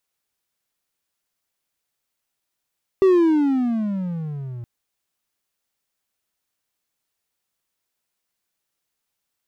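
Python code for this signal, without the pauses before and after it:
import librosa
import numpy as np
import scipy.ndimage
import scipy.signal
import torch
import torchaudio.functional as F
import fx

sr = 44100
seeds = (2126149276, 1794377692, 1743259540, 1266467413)

y = fx.riser_tone(sr, length_s=1.62, level_db=-8.5, wave='triangle', hz=391.0, rise_st=-21.0, swell_db=-19.5)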